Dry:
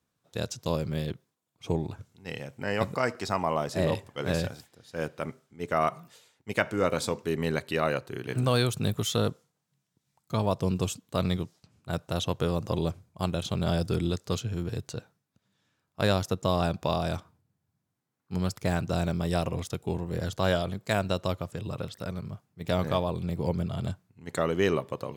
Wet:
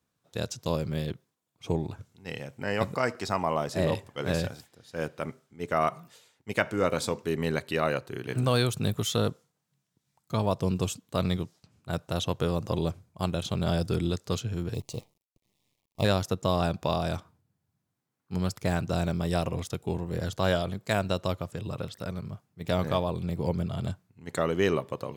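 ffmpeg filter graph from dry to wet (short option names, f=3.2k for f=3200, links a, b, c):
-filter_complex "[0:a]asettb=1/sr,asplit=3[a][b][c];[a]atrim=end=14.744[d];[b]atrim=start=14.74:end=16.05,asetpts=PTS-STARTPTS,afade=t=in:d=0.004:c=qsin,afade=t=out:st=1.306:d=0.004:c=qsin,asubboost=boost=2.5:cutoff=210,acrusher=bits=9:dc=4:mix=0:aa=0.000001,asuperstop=centerf=1500:order=4:qfactor=1.5[e];[c]atrim=start=16.046[f];[d][e]acrossfade=d=0.004:c1=hsin:c2=qsin[g];[g][f]acrossfade=d=0.004:c1=qsin:c2=hsin"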